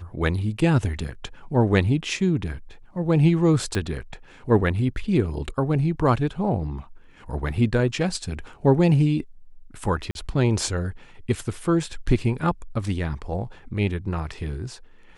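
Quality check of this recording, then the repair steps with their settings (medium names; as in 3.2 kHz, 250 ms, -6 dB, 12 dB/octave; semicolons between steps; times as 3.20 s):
3.75 s: pop -13 dBFS
10.11–10.15 s: dropout 41 ms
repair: de-click; interpolate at 10.11 s, 41 ms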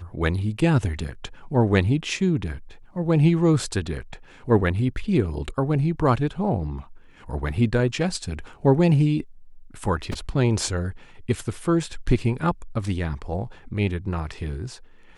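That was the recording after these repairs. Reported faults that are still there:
3.75 s: pop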